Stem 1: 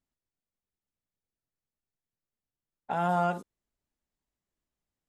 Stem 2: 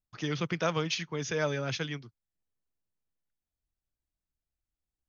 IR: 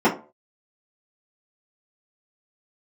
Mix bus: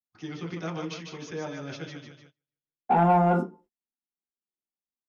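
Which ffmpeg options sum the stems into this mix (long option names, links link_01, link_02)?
-filter_complex "[0:a]alimiter=limit=-21.5dB:level=0:latency=1:release=49,volume=-4dB,asplit=2[link_01][link_02];[link_02]volume=-7dB[link_03];[1:a]volume=-9dB,asplit=3[link_04][link_05][link_06];[link_05]volume=-19dB[link_07];[link_06]volume=-4.5dB[link_08];[2:a]atrim=start_sample=2205[link_09];[link_03][link_07]amix=inputs=2:normalize=0[link_10];[link_10][link_09]afir=irnorm=-1:irlink=0[link_11];[link_08]aecho=0:1:150|300|450|600|750|900|1050:1|0.47|0.221|0.104|0.0488|0.0229|0.0108[link_12];[link_01][link_04][link_11][link_12]amix=inputs=4:normalize=0,agate=range=-29dB:threshold=-54dB:ratio=16:detection=peak,asoftclip=type=tanh:threshold=-12dB"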